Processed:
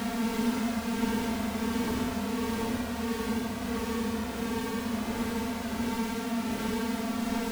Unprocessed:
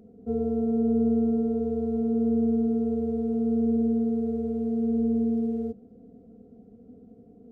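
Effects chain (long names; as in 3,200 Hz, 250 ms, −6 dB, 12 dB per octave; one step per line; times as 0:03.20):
each half-wave held at its own peak
extreme stretch with random phases 13×, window 0.05 s, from 0:02.79
level −7.5 dB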